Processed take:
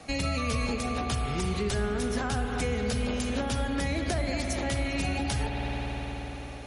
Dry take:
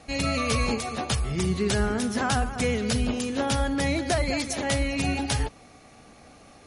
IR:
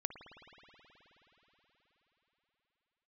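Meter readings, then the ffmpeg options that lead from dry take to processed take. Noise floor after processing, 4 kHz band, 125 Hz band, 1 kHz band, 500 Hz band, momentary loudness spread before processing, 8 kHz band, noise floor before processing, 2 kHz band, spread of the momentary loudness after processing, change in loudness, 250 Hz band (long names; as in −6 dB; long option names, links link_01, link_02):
−38 dBFS, −4.5 dB, −2.0 dB, −3.5 dB, −3.5 dB, 3 LU, −5.5 dB, −52 dBFS, −3.5 dB, 4 LU, −4.0 dB, −4.0 dB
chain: -filter_complex "[1:a]atrim=start_sample=2205[link_01];[0:a][link_01]afir=irnorm=-1:irlink=0,acrossover=split=83|320[link_02][link_03][link_04];[link_02]acompressor=threshold=-36dB:ratio=4[link_05];[link_03]acompressor=threshold=-39dB:ratio=4[link_06];[link_04]acompressor=threshold=-36dB:ratio=4[link_07];[link_05][link_06][link_07]amix=inputs=3:normalize=0,volume=4dB"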